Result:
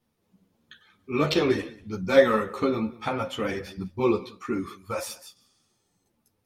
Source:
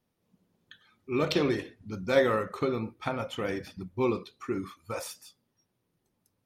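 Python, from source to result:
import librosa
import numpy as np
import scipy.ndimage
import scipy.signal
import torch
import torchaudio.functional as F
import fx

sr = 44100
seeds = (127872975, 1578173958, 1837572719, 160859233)

y = x + 10.0 ** (-20.5 / 20.0) * np.pad(x, (int(187 * sr / 1000.0), 0))[:len(x)]
y = fx.spec_repair(y, sr, seeds[0], start_s=5.38, length_s=0.63, low_hz=600.0, high_hz=10000.0, source='both')
y = fx.ensemble(y, sr)
y = y * 10.0 ** (7.0 / 20.0)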